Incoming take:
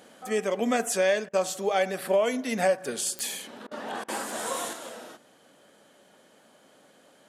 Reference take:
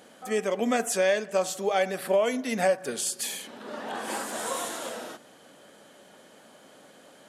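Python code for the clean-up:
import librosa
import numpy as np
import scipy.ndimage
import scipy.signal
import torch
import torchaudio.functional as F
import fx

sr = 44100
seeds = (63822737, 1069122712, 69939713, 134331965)

y = fx.fix_declick_ar(x, sr, threshold=10.0)
y = fx.fix_interpolate(y, sr, at_s=(1.29, 3.67, 4.04), length_ms=42.0)
y = fx.gain(y, sr, db=fx.steps((0.0, 0.0), (4.73, 5.0)))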